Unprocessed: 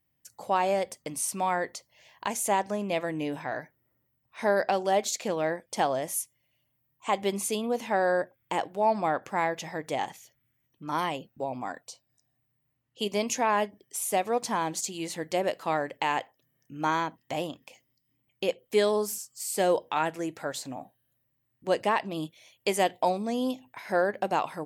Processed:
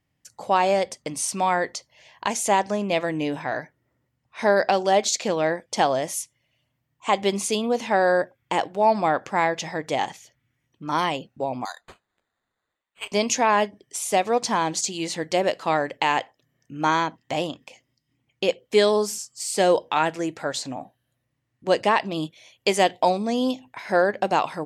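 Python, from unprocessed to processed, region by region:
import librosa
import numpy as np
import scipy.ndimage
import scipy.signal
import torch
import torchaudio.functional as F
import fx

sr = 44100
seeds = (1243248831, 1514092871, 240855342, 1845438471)

y = fx.chain(x, sr, fx.highpass(hz=850.0, slope=24),
    fx.high_shelf(hz=2500.0, db=-9.0),
    fx.resample_bad(factor=8, down='none', up='hold'), at=(11.65, 13.12))
y = scipy.signal.sosfilt(scipy.signal.butter(2, 8000.0, 'lowpass', fs=sr, output='sos'), y)
y = fx.dynamic_eq(y, sr, hz=4900.0, q=0.86, threshold_db=-47.0, ratio=4.0, max_db=4)
y = y * librosa.db_to_amplitude(5.5)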